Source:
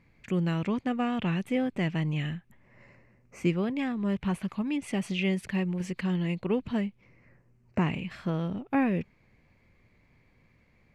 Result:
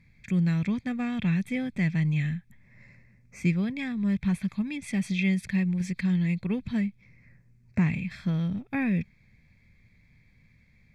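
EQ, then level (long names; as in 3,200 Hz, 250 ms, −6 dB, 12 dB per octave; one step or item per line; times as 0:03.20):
Butterworth band-reject 2,900 Hz, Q 5.4
flat-topped bell 630 Hz −12.5 dB 2.6 octaves
high-shelf EQ 7,900 Hz −5 dB
+4.5 dB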